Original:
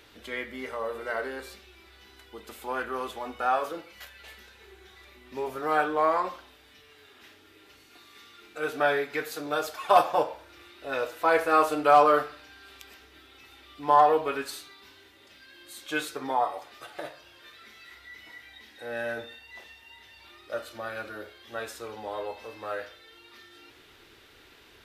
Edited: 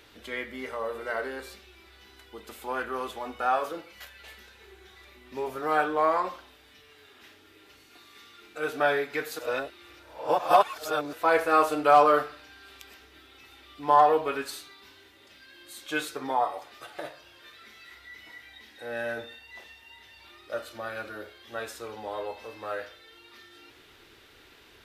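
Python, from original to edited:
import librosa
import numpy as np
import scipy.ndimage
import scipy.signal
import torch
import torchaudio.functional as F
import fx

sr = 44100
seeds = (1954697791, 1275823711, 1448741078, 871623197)

y = fx.edit(x, sr, fx.reverse_span(start_s=9.39, length_s=1.74), tone=tone)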